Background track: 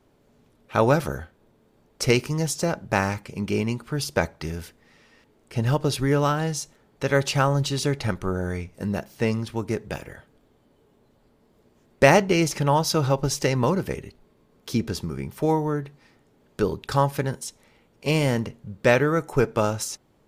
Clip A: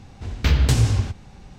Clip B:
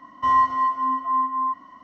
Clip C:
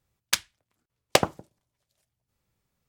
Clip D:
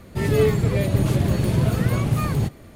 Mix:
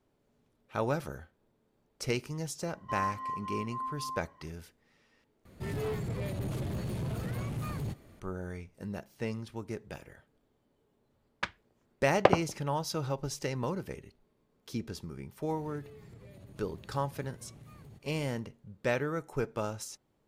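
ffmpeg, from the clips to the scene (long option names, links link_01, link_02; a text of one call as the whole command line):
ffmpeg -i bed.wav -i cue0.wav -i cue1.wav -i cue2.wav -i cue3.wav -filter_complex "[4:a]asplit=2[link_01][link_02];[0:a]volume=-12dB[link_03];[link_01]asoftclip=type=tanh:threshold=-18.5dB[link_04];[3:a]lowpass=1600[link_05];[link_02]acompressor=threshold=-39dB:ratio=6:attack=3.2:release=140:knee=1:detection=peak[link_06];[link_03]asplit=2[link_07][link_08];[link_07]atrim=end=5.454[link_09];[link_04]atrim=end=2.75,asetpts=PTS-STARTPTS,volume=-11.5dB[link_10];[link_08]atrim=start=8.196[link_11];[2:a]atrim=end=1.83,asetpts=PTS-STARTPTS,volume=-15.5dB,afade=type=in:duration=0.004:curve=hsin,afade=type=out:start_time=1.826:duration=0.004:curve=hsin,adelay=2660[link_12];[link_05]atrim=end=2.88,asetpts=PTS-STARTPTS,volume=-0.5dB,afade=type=in:duration=0.004:curve=hsin,afade=type=out:start_time=2.876:duration=0.004:curve=hsin,adelay=11100[link_13];[link_06]atrim=end=2.75,asetpts=PTS-STARTPTS,volume=-11.5dB,afade=type=in:duration=0.004:curve=hsin,afade=type=out:start_time=2.746:duration=0.004:curve=hsin,adelay=15500[link_14];[link_09][link_10]acrossfade=duration=0.004:curve1=hsin:curve2=hsin[link_15];[link_15][link_11]acrossfade=duration=0.004:curve1=hsin:curve2=hsin[link_16];[link_16][link_12][link_13][link_14]amix=inputs=4:normalize=0" out.wav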